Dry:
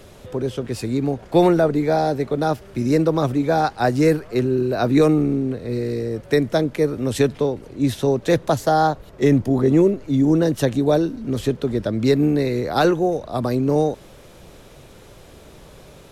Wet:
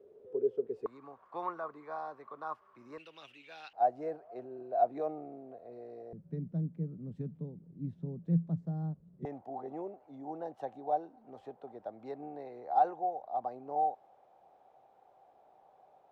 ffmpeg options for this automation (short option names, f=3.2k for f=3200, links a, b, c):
-af "asetnsamples=n=441:p=0,asendcmd='0.86 bandpass f 1100;2.98 bandpass f 2800;3.73 bandpass f 700;6.13 bandpass f 170;9.25 bandpass f 770',bandpass=f=430:t=q:w=13:csg=0"